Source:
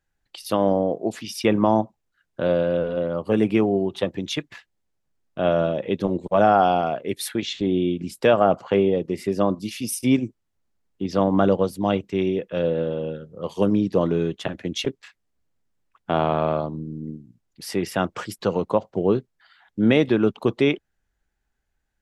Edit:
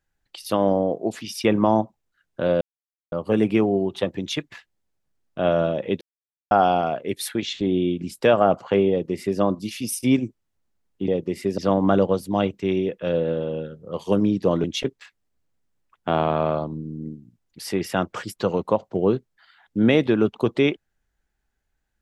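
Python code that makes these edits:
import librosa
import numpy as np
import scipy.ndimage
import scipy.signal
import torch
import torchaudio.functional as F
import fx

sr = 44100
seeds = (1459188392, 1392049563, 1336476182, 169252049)

y = fx.edit(x, sr, fx.silence(start_s=2.61, length_s=0.51),
    fx.silence(start_s=6.01, length_s=0.5),
    fx.duplicate(start_s=8.9, length_s=0.5, to_s=11.08),
    fx.cut(start_s=14.14, length_s=0.52), tone=tone)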